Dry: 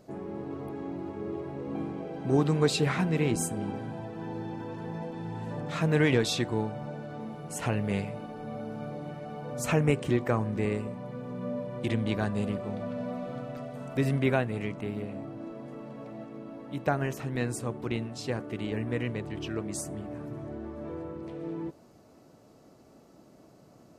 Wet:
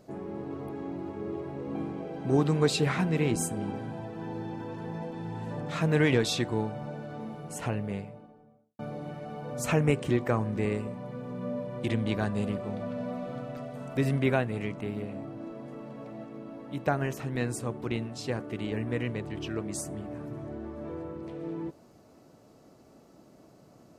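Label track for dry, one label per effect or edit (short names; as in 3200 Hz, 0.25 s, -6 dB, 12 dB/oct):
7.250000	8.790000	studio fade out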